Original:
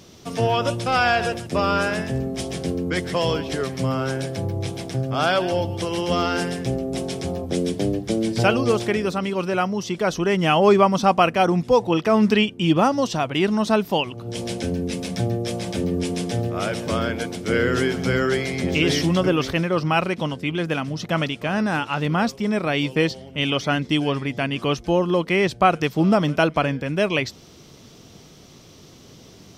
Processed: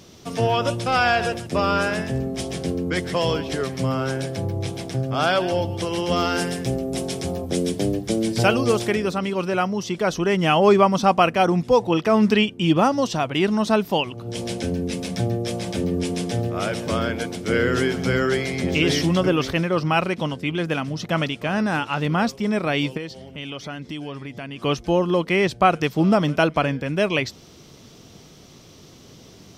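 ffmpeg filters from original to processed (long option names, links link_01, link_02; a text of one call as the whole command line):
ffmpeg -i in.wav -filter_complex "[0:a]asettb=1/sr,asplit=3[link_01][link_02][link_03];[link_01]atrim=end=6.164[link_04];[link_02]atrim=start=6.16:end=8.96,asetpts=PTS-STARTPTS,afade=type=in:duration=0.004:curve=qsin,afade=type=out:start_time=2.796:duration=0.004:curve=qsin,highshelf=frequency=7800:gain=8[link_05];[link_03]atrim=start=8.956[link_06];[link_04][link_05]acrossfade=duration=0.004:curve1=hsin:curve2=qsin[link_07];[link_07][link_06]acrossfade=duration=0.004:curve1=qsin:curve2=hsin,asplit=3[link_08][link_09][link_10];[link_08]afade=type=out:start_time=22.96:duration=0.02[link_11];[link_09]acompressor=threshold=-34dB:ratio=2.5:attack=3.2:release=140:knee=1:detection=peak,afade=type=in:start_time=22.96:duration=0.02,afade=type=out:start_time=24.63:duration=0.02[link_12];[link_10]afade=type=in:start_time=24.63:duration=0.02[link_13];[link_11][link_12][link_13]amix=inputs=3:normalize=0" out.wav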